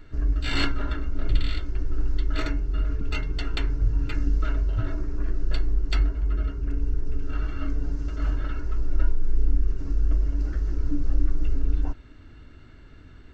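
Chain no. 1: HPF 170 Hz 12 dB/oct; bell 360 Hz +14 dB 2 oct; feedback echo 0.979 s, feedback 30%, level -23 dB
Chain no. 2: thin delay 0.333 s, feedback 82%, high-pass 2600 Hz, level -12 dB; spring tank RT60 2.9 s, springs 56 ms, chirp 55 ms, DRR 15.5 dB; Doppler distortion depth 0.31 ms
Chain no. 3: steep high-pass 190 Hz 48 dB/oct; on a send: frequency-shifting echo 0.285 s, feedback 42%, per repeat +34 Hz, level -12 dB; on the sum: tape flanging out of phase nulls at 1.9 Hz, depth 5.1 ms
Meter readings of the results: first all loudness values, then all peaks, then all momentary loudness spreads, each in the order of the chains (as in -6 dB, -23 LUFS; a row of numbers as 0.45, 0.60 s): -28.0, -29.0, -40.5 LUFS; -7.0, -8.5, -17.0 dBFS; 8, 5, 10 LU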